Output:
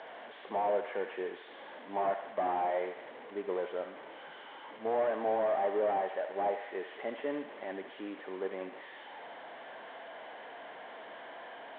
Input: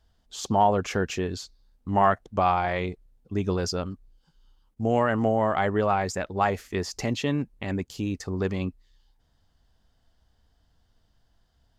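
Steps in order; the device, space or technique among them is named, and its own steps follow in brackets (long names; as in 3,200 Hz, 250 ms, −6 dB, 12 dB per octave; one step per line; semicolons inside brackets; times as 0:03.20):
harmonic and percussive parts rebalanced percussive −6 dB
digital answering machine (band-pass filter 320–3,000 Hz; linear delta modulator 16 kbit/s, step −39.5 dBFS; loudspeaker in its box 420–4,200 Hz, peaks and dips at 600 Hz +4 dB, 1,300 Hz −7 dB, 2,600 Hz −10 dB)
feedback echo with a high-pass in the loop 73 ms, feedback 79%, high-pass 760 Hz, level −8 dB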